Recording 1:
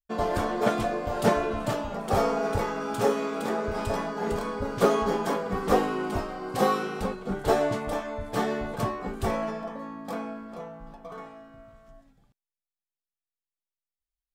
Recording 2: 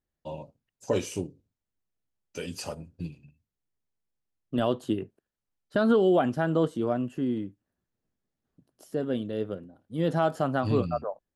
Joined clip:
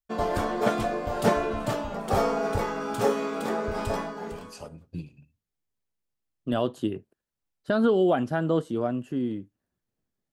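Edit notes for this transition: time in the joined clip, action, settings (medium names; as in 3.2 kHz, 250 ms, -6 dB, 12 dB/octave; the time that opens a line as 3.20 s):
recording 1
4.42 s: go over to recording 2 from 2.48 s, crossfade 0.96 s quadratic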